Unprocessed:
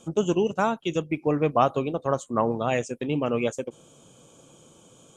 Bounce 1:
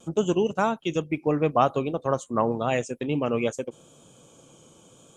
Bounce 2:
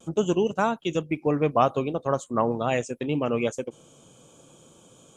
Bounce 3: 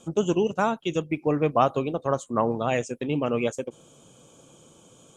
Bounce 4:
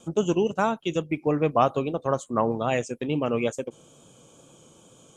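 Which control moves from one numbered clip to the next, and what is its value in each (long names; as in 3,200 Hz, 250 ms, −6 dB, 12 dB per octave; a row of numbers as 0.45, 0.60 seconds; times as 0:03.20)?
pitch vibrato, speed: 0.82, 0.48, 15, 2.3 Hertz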